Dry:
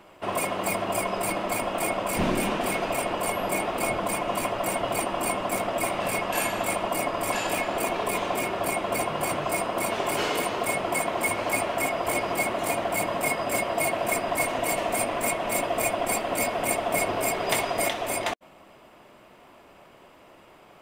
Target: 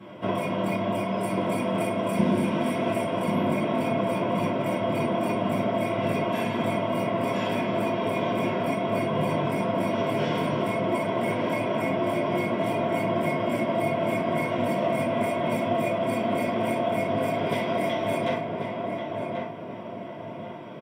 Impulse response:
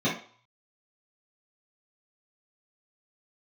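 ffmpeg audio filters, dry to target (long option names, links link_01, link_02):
-filter_complex "[0:a]asettb=1/sr,asplit=3[link_01][link_02][link_03];[link_01]atrim=end=1.174[link_04];[link_02]atrim=start=1.17:end=3.24,asetpts=PTS-STARTPTS,afade=type=in:duration=0.004:curve=qsin,afade=type=out:start_time=2.066:duration=0.004:curve=qsin,equalizer=frequency=9900:width=1:gain=9.5[link_05];[link_03]atrim=start=3.236[link_06];[link_04][link_05]acrossfade=duration=0.004:curve1=hsin:curve2=qsin[link_07];[link_07][link_06]acrossfade=duration=0.004:curve1=qsin:curve2=hsin,acompressor=threshold=-33dB:ratio=6,asplit=2[link_08][link_09];[link_09]adelay=1087,lowpass=frequency=1600:poles=1,volume=-3dB,asplit=2[link_10][link_11];[link_11]adelay=1087,lowpass=frequency=1600:poles=1,volume=0.43,asplit=2[link_12][link_13];[link_13]adelay=1087,lowpass=frequency=1600:poles=1,volume=0.43,asplit=2[link_14][link_15];[link_15]adelay=1087,lowpass=frequency=1600:poles=1,volume=0.43,asplit=2[link_16][link_17];[link_17]adelay=1087,lowpass=frequency=1600:poles=1,volume=0.43,asplit=2[link_18][link_19];[link_19]adelay=1087,lowpass=frequency=1600:poles=1,volume=0.43[link_20];[link_08][link_10][link_12][link_14][link_16][link_18][link_20]amix=inputs=7:normalize=0[link_21];[1:a]atrim=start_sample=2205,asetrate=39690,aresample=44100[link_22];[link_21][link_22]afir=irnorm=-1:irlink=0,volume=-6.5dB"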